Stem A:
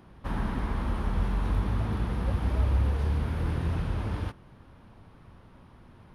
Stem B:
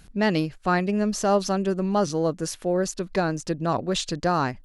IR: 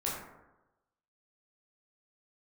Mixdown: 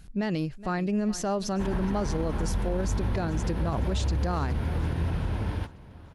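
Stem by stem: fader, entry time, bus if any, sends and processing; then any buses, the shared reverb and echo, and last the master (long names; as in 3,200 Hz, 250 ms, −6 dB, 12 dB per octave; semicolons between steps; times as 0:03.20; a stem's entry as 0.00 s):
+1.5 dB, 1.35 s, no send, echo send −24 dB, notch filter 1,200 Hz, Q 7.2
−4.5 dB, 0.00 s, no send, echo send −20.5 dB, low-shelf EQ 170 Hz +8.5 dB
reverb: not used
echo: repeating echo 419 ms, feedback 51%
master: brickwall limiter −19.5 dBFS, peak gain reduction 8 dB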